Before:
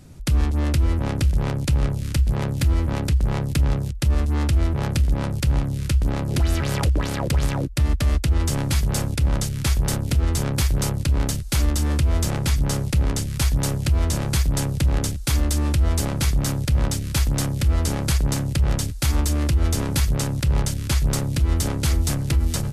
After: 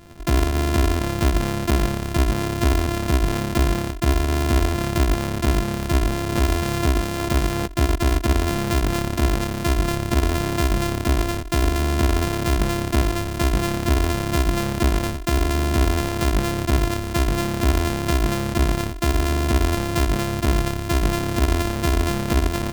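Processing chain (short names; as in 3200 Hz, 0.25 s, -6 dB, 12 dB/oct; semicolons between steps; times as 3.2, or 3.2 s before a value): sample sorter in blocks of 128 samples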